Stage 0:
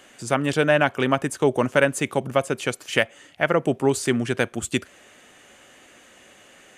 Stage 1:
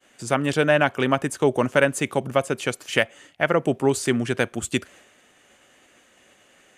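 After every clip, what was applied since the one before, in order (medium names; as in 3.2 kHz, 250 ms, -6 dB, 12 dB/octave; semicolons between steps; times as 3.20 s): expander -45 dBFS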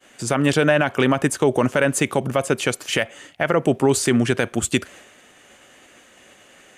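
peak limiter -13 dBFS, peak gain reduction 9.5 dB; trim +6.5 dB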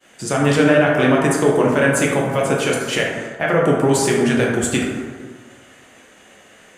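plate-style reverb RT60 1.6 s, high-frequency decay 0.4×, DRR -3 dB; trim -1.5 dB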